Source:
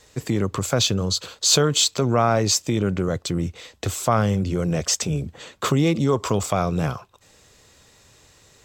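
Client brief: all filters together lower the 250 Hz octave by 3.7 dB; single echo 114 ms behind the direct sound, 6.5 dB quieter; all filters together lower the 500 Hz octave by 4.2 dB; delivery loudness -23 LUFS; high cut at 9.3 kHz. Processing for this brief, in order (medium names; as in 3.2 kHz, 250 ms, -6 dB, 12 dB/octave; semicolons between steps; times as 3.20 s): low-pass 9.3 kHz; peaking EQ 250 Hz -4.5 dB; peaking EQ 500 Hz -4 dB; delay 114 ms -6.5 dB; trim -0.5 dB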